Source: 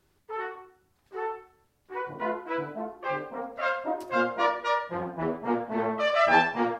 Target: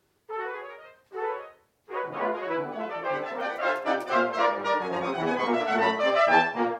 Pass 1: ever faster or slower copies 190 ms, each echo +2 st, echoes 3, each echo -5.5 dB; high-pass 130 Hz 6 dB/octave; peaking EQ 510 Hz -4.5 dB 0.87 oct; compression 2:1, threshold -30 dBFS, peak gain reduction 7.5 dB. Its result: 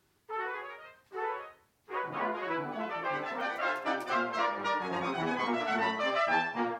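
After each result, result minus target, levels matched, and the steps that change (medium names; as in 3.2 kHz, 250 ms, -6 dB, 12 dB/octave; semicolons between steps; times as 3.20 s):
compression: peak gain reduction +7.5 dB; 500 Hz band -2.5 dB
remove: compression 2:1, threshold -30 dBFS, peak gain reduction 7.5 dB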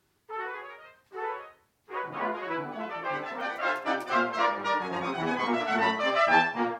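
500 Hz band -3.0 dB
change: peaking EQ 510 Hz +2.5 dB 0.87 oct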